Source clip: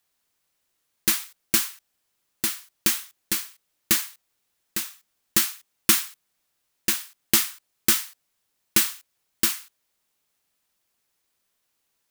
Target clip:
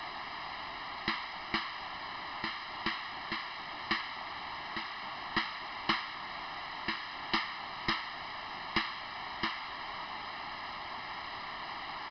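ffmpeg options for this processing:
ffmpeg -i in.wav -filter_complex "[0:a]aeval=exprs='val(0)+0.5*0.0944*sgn(val(0))':channel_layout=same,acrossover=split=370 2000:gain=0.224 1 0.224[link_01][link_02][link_03];[link_01][link_02][link_03]amix=inputs=3:normalize=0,aeval=exprs='0.376*(cos(1*acos(clip(val(0)/0.376,-1,1)))-cos(1*PI/2))+0.0944*(cos(3*acos(clip(val(0)/0.376,-1,1)))-cos(3*PI/2))+0.0075*(cos(6*acos(clip(val(0)/0.376,-1,1)))-cos(6*PI/2))+0.00422*(cos(8*acos(clip(val(0)/0.376,-1,1)))-cos(8*PI/2))':channel_layout=same,aresample=11025,aeval=exprs='0.0531*(abs(mod(val(0)/0.0531+3,4)-2)-1)':channel_layout=same,aresample=44100,aecho=1:1:1:0.92,volume=6dB" out.wav

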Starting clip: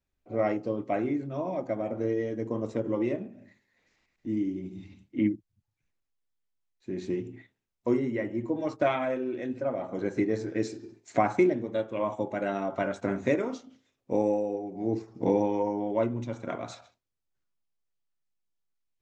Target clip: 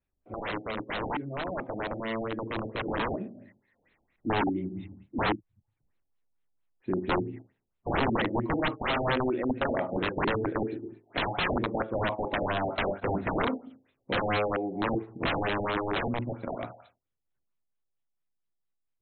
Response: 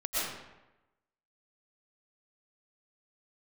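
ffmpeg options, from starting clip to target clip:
-af "aeval=exprs='(mod(17.8*val(0)+1,2)-1)/17.8':channel_layout=same,dynaudnorm=framelen=410:gausssize=17:maxgain=6dB,afftfilt=real='re*lt(b*sr/1024,830*pow(4300/830,0.5+0.5*sin(2*PI*4.4*pts/sr)))':imag='im*lt(b*sr/1024,830*pow(4300/830,0.5+0.5*sin(2*PI*4.4*pts/sr)))':win_size=1024:overlap=0.75,volume=-1dB"

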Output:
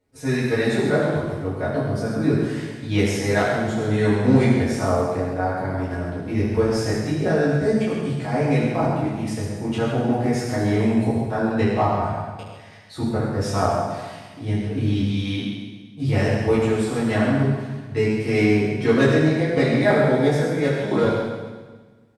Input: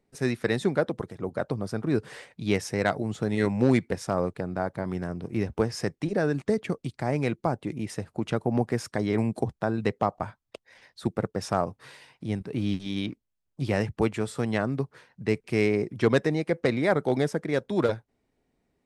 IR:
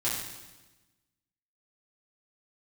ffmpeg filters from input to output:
-filter_complex "[0:a]atempo=0.85,aecho=1:1:133:0.376[link_01];[1:a]atrim=start_sample=2205,asetrate=35721,aresample=44100[link_02];[link_01][link_02]afir=irnorm=-1:irlink=0,volume=-3.5dB"

